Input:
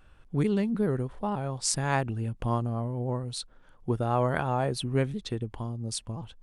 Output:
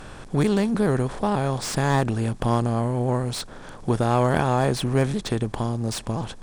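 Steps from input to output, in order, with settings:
compressor on every frequency bin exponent 0.6
slew-rate limiting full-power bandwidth 150 Hz
level +3.5 dB

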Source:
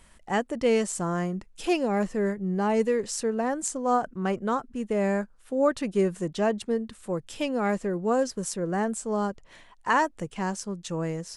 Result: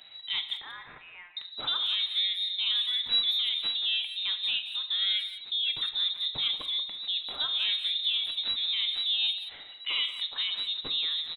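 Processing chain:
stylus tracing distortion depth 0.2 ms
0:03.04–0:03.64: comb filter 4.1 ms, depth 46%
in parallel at +3 dB: downward compressor 16 to 1, threshold −33 dBFS, peak gain reduction 16.5 dB
on the sum: brickwall limiter −16.5 dBFS, peak gain reduction 7.5 dB
0:00.53–0:01.37: inverse Chebyshev high-pass filter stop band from 290 Hz, stop band 80 dB
convolution reverb RT60 0.80 s, pre-delay 7 ms, DRR 7.5 dB
voice inversion scrambler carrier 3,900 Hz
far-end echo of a speakerphone 180 ms, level −11 dB
level −6 dB

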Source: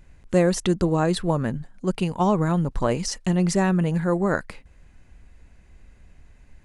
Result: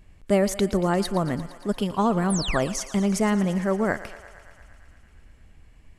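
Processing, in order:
sound drawn into the spectrogram fall, 0:02.55–0:02.88, 1,200–9,900 Hz −30 dBFS
speed change +11%
feedback echo with a high-pass in the loop 115 ms, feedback 79%, high-pass 400 Hz, level −15 dB
level −1.5 dB

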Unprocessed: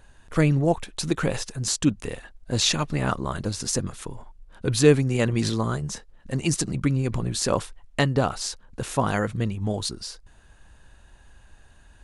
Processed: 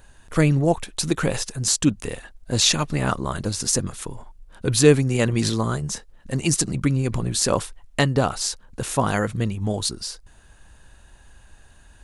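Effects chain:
high-shelf EQ 7,400 Hz +7.5 dB
level +2 dB

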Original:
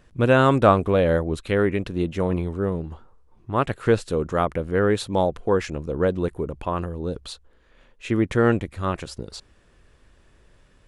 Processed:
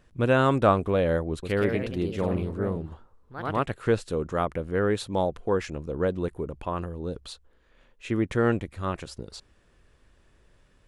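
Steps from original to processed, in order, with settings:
0:01.29–0:03.73: delay with pitch and tempo change per echo 136 ms, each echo +2 semitones, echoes 2, each echo −6 dB
level −4.5 dB

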